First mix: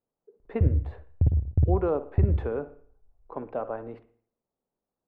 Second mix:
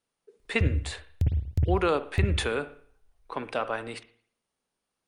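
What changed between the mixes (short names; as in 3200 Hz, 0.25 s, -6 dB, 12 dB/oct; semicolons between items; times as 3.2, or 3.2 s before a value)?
background -4.0 dB; master: remove Chebyshev low-pass 690 Hz, order 2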